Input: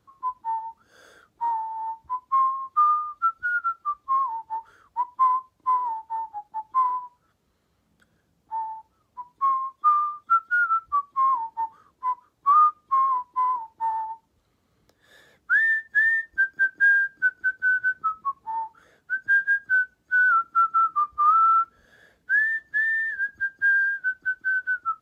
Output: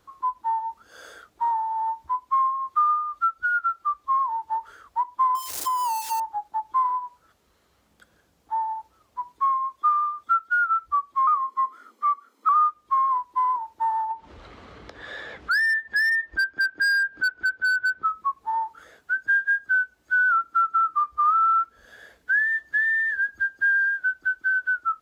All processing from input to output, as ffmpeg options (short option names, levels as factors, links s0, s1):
-filter_complex "[0:a]asettb=1/sr,asplit=3[s0][s1][s2];[s0]atrim=end=5.354[s3];[s1]atrim=start=5.35:end=6.2,asetpts=PTS-STARTPTS,afade=t=in:d=0.004:c=qsin,afade=t=out:st=0.846:d=0.004:c=qsin,aeval=exprs='val(0)+0.5*0.0119*sgn(val(0))':c=same,bass=f=250:g=-9,treble=f=4000:g=15,acompressor=threshold=0.0562:ratio=6:attack=3.2:release=140:knee=1:detection=peak[s4];[s2]atrim=start=6.196[s5];[s3][s4]acrossfade=d=0.004:c1=hsin:c2=qsin[s6];[s6][s5]acrossfade=d=0.004:c1=qsin:c2=hsin,asettb=1/sr,asplit=3[s7][s8][s9];[s7]atrim=end=11.274[s10];[s8]atrim=start=11.27:end=12.49,asetpts=PTS-STARTPTS,afade=t=in:d=0.004:c=qsin,afade=t=out:st=1.216:d=0.004:c=qsin,aecho=1:1:1:0.53,atrim=end_sample=53802,afreqshift=160[s11];[s9]atrim=start=12.486[s12];[s10][s11]acrossfade=d=0.004:c1=hsin:c2=qsin[s13];[s13][s12]acrossfade=d=0.004:c1=qsin:c2=hsin,asettb=1/sr,asplit=3[s14][s15][s16];[s14]atrim=end=14.114[s17];[s15]atrim=start=14.11:end=18.04,asetpts=PTS-STARTPTS,afade=t=in:d=0.004:c=qsin,afade=t=out:st=3.926:d=0.004:c=qsin,lowpass=3100,acompressor=mode=upward:threshold=0.0251:ratio=2.5:attack=3.2:release=140:knee=2.83:detection=peak,asoftclip=type=hard:threshold=0.1[s18];[s16]atrim=start=18.036[s19];[s17][s18]acrossfade=d=0.004:c1=hsin:c2=qsin[s20];[s20][s19]acrossfade=d=0.004:c1=qsin:c2=hsin,equalizer=f=140:w=0.67:g=-10,acompressor=threshold=0.02:ratio=2,volume=2.51"